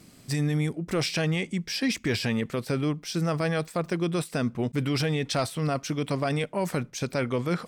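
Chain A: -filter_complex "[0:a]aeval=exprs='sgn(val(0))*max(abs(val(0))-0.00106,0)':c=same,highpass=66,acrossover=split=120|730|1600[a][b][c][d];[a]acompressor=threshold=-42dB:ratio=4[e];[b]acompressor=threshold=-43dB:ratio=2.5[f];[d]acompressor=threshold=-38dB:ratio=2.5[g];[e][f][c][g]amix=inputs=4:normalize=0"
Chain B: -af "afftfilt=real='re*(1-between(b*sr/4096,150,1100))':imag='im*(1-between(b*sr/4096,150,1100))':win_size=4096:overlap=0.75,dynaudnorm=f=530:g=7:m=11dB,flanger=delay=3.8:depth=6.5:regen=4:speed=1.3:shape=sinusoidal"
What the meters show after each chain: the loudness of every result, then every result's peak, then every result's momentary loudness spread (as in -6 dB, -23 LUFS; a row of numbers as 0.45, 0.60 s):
-34.5, -27.5 LUFS; -18.5, -8.5 dBFS; 3, 12 LU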